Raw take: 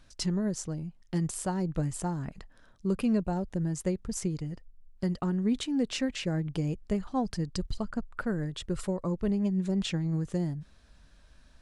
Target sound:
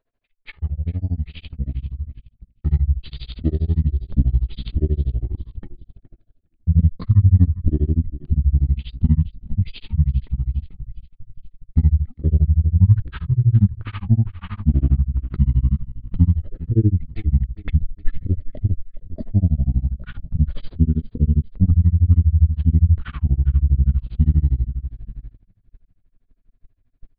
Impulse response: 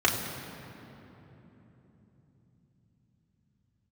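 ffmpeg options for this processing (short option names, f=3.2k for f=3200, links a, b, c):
-filter_complex "[0:a]equalizer=f=910:w=0.8:g=11,asplit=5[a][b][c][d][e];[b]adelay=178,afreqshift=-32,volume=-17dB[f];[c]adelay=356,afreqshift=-64,volume=-23.2dB[g];[d]adelay=534,afreqshift=-96,volume=-29.4dB[h];[e]adelay=712,afreqshift=-128,volume=-35.6dB[i];[a][f][g][h][i]amix=inputs=5:normalize=0,tremolo=f=29:d=1,bandreject=f=1.8k:w=10,asetrate=18846,aresample=44100,asubboost=boost=9.5:cutoff=170,agate=range=-16dB:threshold=-34dB:ratio=16:detection=peak,volume=-1dB"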